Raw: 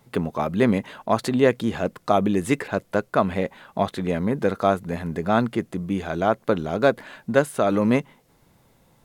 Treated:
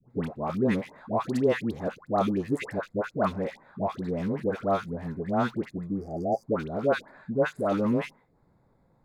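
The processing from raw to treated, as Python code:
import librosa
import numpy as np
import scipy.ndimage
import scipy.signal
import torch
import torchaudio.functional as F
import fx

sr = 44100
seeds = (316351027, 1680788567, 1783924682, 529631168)

y = fx.wiener(x, sr, points=15)
y = fx.dispersion(y, sr, late='highs', ms=108.0, hz=930.0)
y = fx.spec_repair(y, sr, seeds[0], start_s=6.01, length_s=0.42, low_hz=840.0, high_hz=4600.0, source='both')
y = F.gain(torch.from_numpy(y), -5.5).numpy()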